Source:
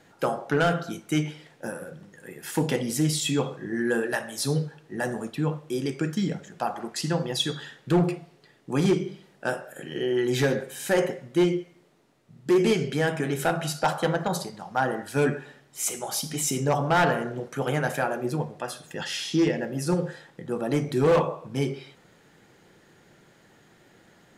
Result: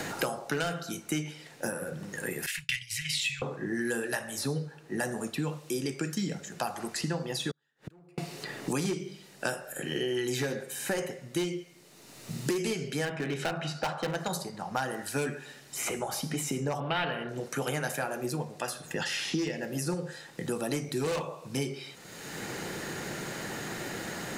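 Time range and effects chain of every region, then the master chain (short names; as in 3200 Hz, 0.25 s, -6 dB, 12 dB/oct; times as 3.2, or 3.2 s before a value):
2.46–3.42 inverse Chebyshev band-stop 320–730 Hz, stop band 80 dB + bell 1700 Hz +13.5 dB 2.3 oct + expander -32 dBFS
7.51–8.18 compressor 2:1, threshold -37 dBFS + flipped gate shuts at -36 dBFS, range -37 dB
13.05–14.15 LPF 2700 Hz + hard clip -20 dBFS
16.8–17.29 resonant high shelf 4600 Hz -13.5 dB, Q 3 + notch 7000 Hz, Q 7.5
whole clip: high shelf 3200 Hz +9 dB; notch 3300 Hz, Q 12; three-band squash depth 100%; gain -7 dB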